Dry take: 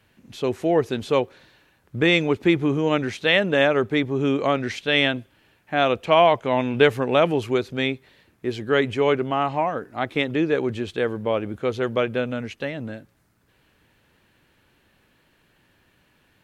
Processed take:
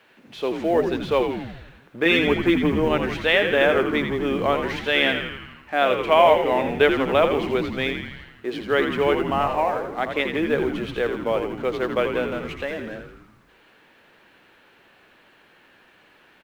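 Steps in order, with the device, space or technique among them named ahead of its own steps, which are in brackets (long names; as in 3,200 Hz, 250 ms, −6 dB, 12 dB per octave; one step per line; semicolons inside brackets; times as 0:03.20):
phone line with mismatched companding (band-pass filter 350–3,600 Hz; mu-law and A-law mismatch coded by mu)
0:02.05–0:02.85: comb filter 6.5 ms, depth 64%
echo with shifted repeats 83 ms, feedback 61%, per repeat −85 Hz, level −6.5 dB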